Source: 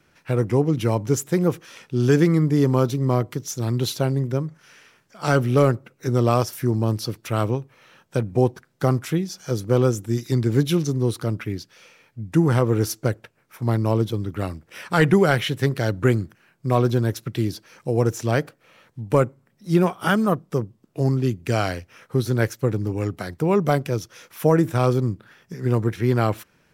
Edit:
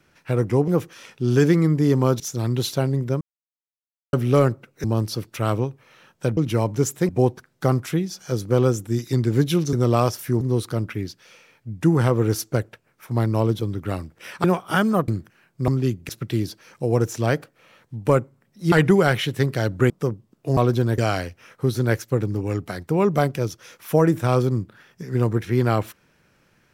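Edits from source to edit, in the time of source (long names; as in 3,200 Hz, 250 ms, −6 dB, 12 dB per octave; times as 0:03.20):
0:00.68–0:01.40: move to 0:08.28
0:02.92–0:03.43: remove
0:04.44–0:05.36: silence
0:06.07–0:06.75: move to 0:10.92
0:14.95–0:16.13: swap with 0:19.77–0:20.41
0:16.73–0:17.14: swap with 0:21.08–0:21.49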